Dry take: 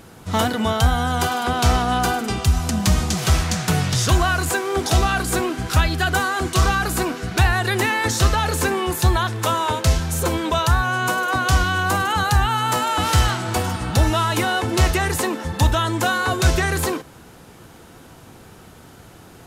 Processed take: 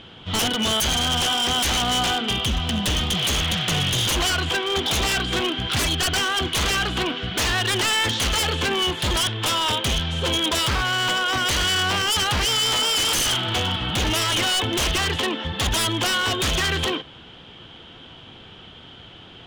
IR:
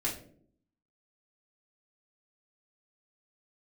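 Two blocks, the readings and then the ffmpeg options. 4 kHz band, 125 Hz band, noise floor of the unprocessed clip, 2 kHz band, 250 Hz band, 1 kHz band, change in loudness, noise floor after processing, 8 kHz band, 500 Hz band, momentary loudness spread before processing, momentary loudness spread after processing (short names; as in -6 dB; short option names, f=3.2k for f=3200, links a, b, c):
+7.5 dB, -8.0 dB, -45 dBFS, -1.5 dB, -4.0 dB, -5.5 dB, -1.0 dB, -44 dBFS, +1.0 dB, -4.0 dB, 4 LU, 4 LU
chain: -af "lowpass=f=3.2k:t=q:w=11,aeval=exprs='0.2*(abs(mod(val(0)/0.2+3,4)-2)-1)':c=same,volume=-2.5dB"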